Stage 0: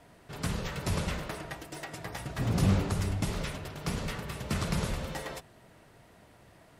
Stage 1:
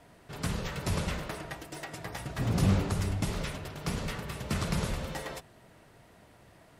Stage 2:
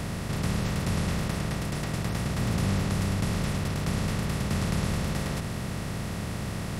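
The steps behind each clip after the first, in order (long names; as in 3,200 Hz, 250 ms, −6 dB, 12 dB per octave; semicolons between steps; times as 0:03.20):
no processing that can be heard
compressor on every frequency bin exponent 0.2; level −5 dB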